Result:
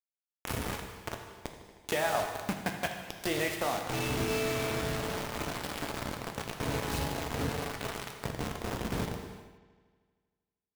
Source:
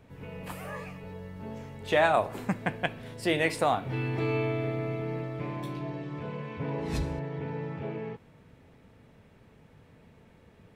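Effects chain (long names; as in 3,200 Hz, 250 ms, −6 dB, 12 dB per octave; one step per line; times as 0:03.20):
wind on the microphone 210 Hz −38 dBFS
high-pass filter 60 Hz 12 dB per octave
bit reduction 5 bits
downward compressor 2.5 to 1, threshold −39 dBFS, peak gain reduction 13.5 dB
on a send: delay with a low-pass on its return 78 ms, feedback 73%, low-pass 3,900 Hz, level −16 dB
on the sum: reverb whose tail is shaped and stops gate 450 ms falling, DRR 4 dB
level +4.5 dB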